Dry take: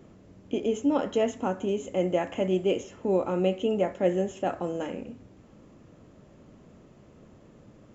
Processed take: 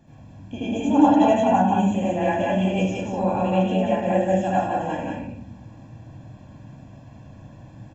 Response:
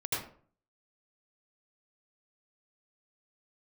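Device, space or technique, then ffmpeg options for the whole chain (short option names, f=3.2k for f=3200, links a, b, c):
microphone above a desk: -filter_complex "[0:a]asettb=1/sr,asplit=3[a][b][c];[a]atrim=end=0.604[d];[b]atrim=start=0.6:end=1.94,asetpts=PTS-STARTPTS,afade=t=in:d=0.004:c=qsin,afade=t=out:st=1.336:d=0.004:c=qsin,equalizer=f=200:t=o:w=0.33:g=5,equalizer=f=315:t=o:w=0.33:g=6,equalizer=f=800:t=o:w=0.33:g=7,equalizer=f=5k:t=o:w=0.33:g=-7[e];[c]atrim=start=1.936[f];[d][e]acrossfade=d=0.004:c1=hsin:c2=qsin[g];[g][f]acrossfade=d=0.004:c1=qsin:c2=hsin,aecho=1:1:1.2:0.88,aecho=1:1:180:0.668[h];[1:a]atrim=start_sample=2205[i];[h][i]afir=irnorm=-1:irlink=0,volume=-1.5dB"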